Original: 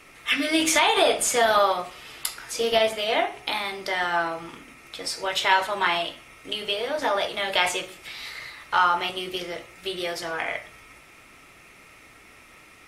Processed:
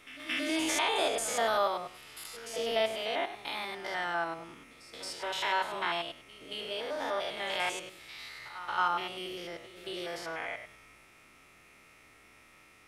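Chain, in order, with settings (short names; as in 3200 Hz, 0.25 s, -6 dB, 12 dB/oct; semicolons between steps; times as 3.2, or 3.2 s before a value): stepped spectrum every 0.1 s; reverse echo 0.225 s -15 dB; gain -7 dB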